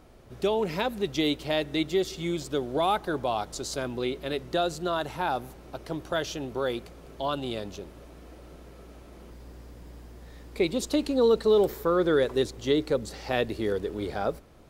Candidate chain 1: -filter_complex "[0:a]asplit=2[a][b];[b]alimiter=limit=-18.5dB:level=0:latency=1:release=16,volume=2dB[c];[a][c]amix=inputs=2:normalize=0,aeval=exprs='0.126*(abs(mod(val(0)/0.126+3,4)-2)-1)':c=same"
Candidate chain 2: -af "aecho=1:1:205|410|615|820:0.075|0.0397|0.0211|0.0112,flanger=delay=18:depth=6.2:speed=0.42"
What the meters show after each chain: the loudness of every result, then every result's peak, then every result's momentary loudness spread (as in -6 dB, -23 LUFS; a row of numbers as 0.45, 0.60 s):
-26.0, -31.0 LUFS; -18.0, -13.0 dBFS; 17, 19 LU